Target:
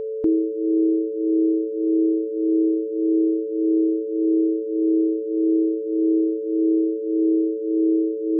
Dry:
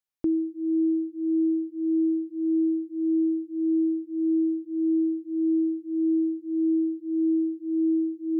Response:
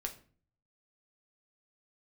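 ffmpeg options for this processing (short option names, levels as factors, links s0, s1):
-filter_complex "[0:a]adynamicequalizer=threshold=0.00891:dfrequency=190:dqfactor=1.3:tfrequency=190:tqfactor=1.3:attack=5:release=100:ratio=0.375:range=2.5:mode=cutabove:tftype=bell,aeval=exprs='val(0)+0.0316*sin(2*PI*440*n/s)':c=same,asplit=2[s0][s1];[s1]asetrate=55563,aresample=44100,atempo=0.793701,volume=0.158[s2];[s0][s2]amix=inputs=2:normalize=0,volume=1.78"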